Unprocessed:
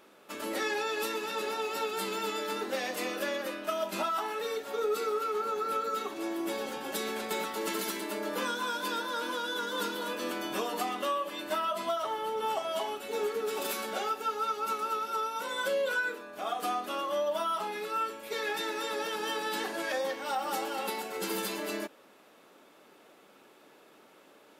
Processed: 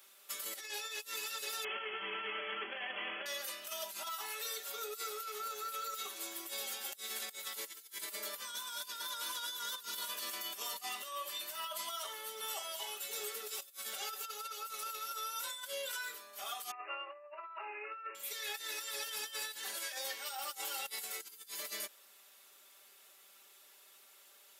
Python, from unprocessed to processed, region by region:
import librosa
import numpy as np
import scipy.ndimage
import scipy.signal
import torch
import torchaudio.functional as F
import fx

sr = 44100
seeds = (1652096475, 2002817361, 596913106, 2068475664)

y = fx.chain(x, sr, fx.halfwave_hold(),
    fx.brickwall_lowpass(high_hz=3400.0), at=(1.64, 3.26))
y = fx.chain(y, sr, fx.brickwall_bandpass(low_hz=300.0, high_hz=2900.0),
    fx.over_compress(threshold_db=-35.0, ratio=-0.5), at=(16.71, 18.15))
y = np.diff(y, prepend=0.0)
y = y + 0.62 * np.pad(y, (int(5.1 * sr / 1000.0), 0))[:len(y)]
y = fx.over_compress(y, sr, threshold_db=-45.0, ratio=-0.5)
y = y * librosa.db_to_amplitude(3.5)